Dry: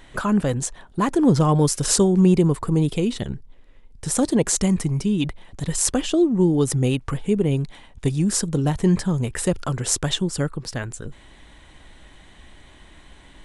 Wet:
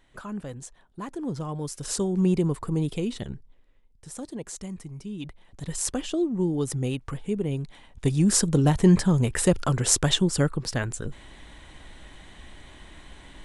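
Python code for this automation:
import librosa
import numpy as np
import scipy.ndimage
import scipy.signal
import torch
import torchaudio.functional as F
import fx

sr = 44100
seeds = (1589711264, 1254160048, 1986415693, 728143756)

y = fx.gain(x, sr, db=fx.line((1.6, -15.0), (2.26, -6.5), (3.33, -6.5), (4.09, -17.0), (4.9, -17.0), (5.72, -7.5), (7.62, -7.5), (8.31, 1.0)))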